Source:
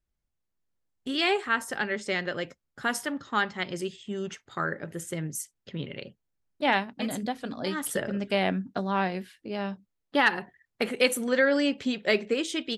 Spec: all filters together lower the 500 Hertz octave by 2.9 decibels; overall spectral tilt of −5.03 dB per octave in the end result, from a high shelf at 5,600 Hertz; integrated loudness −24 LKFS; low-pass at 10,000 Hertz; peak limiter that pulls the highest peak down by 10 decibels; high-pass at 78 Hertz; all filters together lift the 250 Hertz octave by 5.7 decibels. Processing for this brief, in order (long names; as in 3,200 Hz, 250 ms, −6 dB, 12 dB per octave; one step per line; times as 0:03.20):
high-pass filter 78 Hz
low-pass filter 10,000 Hz
parametric band 250 Hz +8.5 dB
parametric band 500 Hz −6 dB
high-shelf EQ 5,600 Hz −3 dB
level +6.5 dB
brickwall limiter −12 dBFS